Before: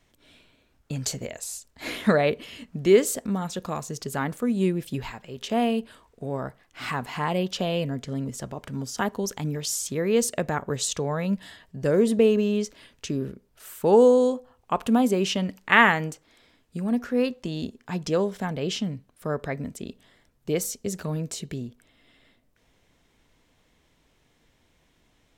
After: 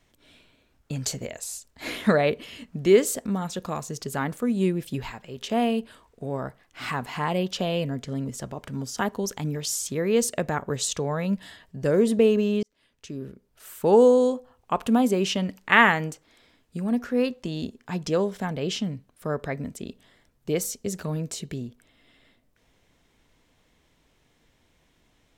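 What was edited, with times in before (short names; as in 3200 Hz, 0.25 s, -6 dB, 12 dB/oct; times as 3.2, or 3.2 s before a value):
12.63–13.83 fade in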